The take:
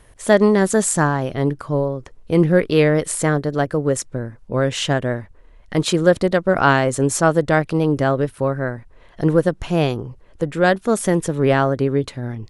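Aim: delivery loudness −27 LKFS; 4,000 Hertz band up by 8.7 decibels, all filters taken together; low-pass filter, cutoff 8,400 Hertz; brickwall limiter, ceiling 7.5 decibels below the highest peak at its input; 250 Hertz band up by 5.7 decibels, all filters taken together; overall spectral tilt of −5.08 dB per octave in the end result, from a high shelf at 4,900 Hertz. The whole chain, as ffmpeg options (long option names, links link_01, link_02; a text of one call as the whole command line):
ffmpeg -i in.wav -af "lowpass=8400,equalizer=frequency=250:width_type=o:gain=8,equalizer=frequency=4000:width_type=o:gain=8.5,highshelf=frequency=4900:gain=6.5,volume=-10dB,alimiter=limit=-15.5dB:level=0:latency=1" out.wav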